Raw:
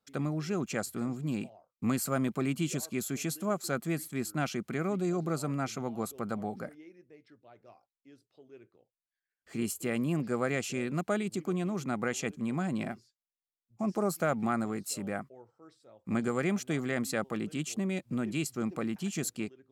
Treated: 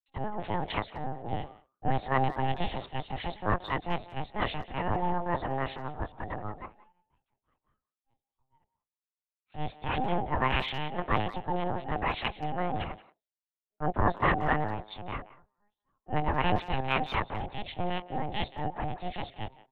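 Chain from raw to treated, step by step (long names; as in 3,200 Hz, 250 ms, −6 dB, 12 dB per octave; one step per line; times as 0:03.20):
one scale factor per block 7 bits
high-shelf EQ 2,700 Hz +5.5 dB
mains-hum notches 50/100/150 Hz
in parallel at −6 dB: soft clipping −28 dBFS, distortion −13 dB
on the sum: ring modulation 530 Hz
linear-prediction vocoder at 8 kHz pitch kept
far-end echo of a speakerphone 180 ms, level −12 dB
multiband upward and downward expander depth 100%
level +2 dB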